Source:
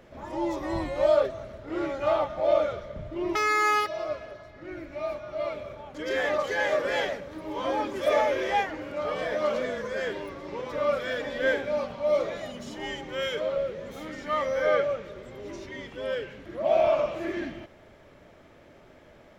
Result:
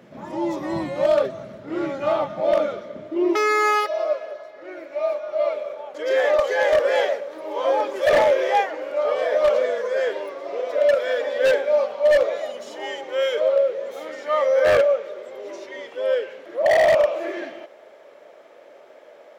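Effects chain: high-pass sweep 170 Hz -> 520 Hz, 2.31–3.8; spectral repair 10.48–11.1, 640–1300 Hz after; wavefolder -13 dBFS; gain +2.5 dB

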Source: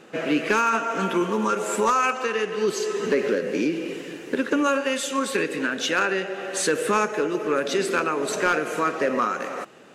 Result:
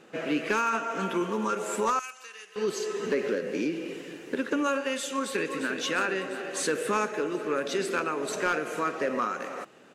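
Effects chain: 1.99–2.56 differentiator; 5.1–5.71 echo throw 0.35 s, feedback 75%, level -8 dB; gain -5.5 dB

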